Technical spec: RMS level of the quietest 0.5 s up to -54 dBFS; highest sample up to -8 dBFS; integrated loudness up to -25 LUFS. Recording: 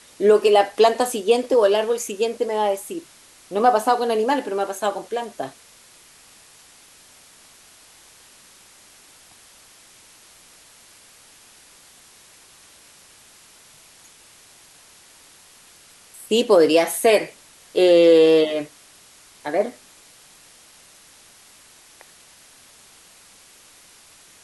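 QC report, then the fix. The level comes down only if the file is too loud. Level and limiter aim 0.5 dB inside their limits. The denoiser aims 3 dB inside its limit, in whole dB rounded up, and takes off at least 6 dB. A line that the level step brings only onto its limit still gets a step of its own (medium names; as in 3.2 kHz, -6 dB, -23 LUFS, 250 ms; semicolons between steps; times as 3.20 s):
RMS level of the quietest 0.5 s -50 dBFS: fail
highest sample -4.5 dBFS: fail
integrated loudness -19.0 LUFS: fail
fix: trim -6.5 dB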